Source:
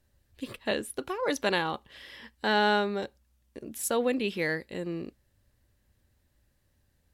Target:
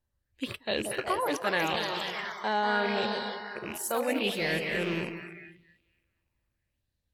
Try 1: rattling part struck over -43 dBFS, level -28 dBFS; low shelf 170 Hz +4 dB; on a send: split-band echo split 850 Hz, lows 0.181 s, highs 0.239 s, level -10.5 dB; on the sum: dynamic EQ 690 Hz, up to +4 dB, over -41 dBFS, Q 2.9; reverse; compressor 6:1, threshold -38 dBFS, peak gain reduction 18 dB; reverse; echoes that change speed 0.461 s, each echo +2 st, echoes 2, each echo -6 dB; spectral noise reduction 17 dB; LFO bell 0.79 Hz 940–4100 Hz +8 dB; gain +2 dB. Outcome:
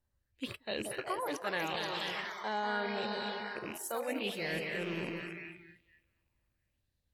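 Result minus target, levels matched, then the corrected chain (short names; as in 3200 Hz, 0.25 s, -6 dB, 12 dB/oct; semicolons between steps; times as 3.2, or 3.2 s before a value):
compressor: peak gain reduction +7 dB
rattling part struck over -43 dBFS, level -28 dBFS; low shelf 170 Hz +4 dB; on a send: split-band echo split 850 Hz, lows 0.181 s, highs 0.239 s, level -10.5 dB; on the sum: dynamic EQ 690 Hz, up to +4 dB, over -41 dBFS, Q 2.9; reverse; compressor 6:1, threshold -29.5 dBFS, peak gain reduction 11 dB; reverse; echoes that change speed 0.461 s, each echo +2 st, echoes 2, each echo -6 dB; spectral noise reduction 17 dB; LFO bell 0.79 Hz 940–4100 Hz +8 dB; gain +2 dB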